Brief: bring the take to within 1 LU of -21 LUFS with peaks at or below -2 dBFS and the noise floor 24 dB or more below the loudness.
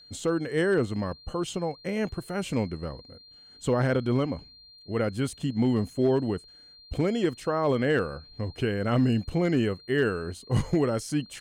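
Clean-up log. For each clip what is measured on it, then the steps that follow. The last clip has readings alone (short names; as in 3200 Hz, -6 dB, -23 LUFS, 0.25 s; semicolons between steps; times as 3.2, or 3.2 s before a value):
clipped 0.3%; flat tops at -15.5 dBFS; steady tone 4200 Hz; tone level -50 dBFS; loudness -28.0 LUFS; peak -15.5 dBFS; loudness target -21.0 LUFS
-> clip repair -15.5 dBFS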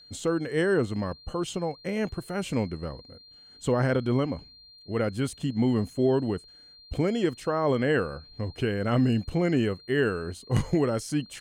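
clipped 0.0%; steady tone 4200 Hz; tone level -50 dBFS
-> notch 4200 Hz, Q 30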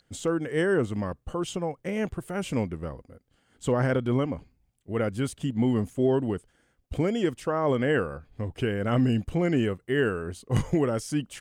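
steady tone none; loudness -27.5 LUFS; peak -9.5 dBFS; loudness target -21.0 LUFS
-> gain +6.5 dB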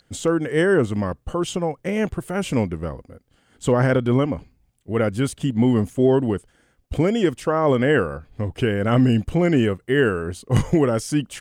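loudness -21.0 LUFS; peak -3.0 dBFS; noise floor -64 dBFS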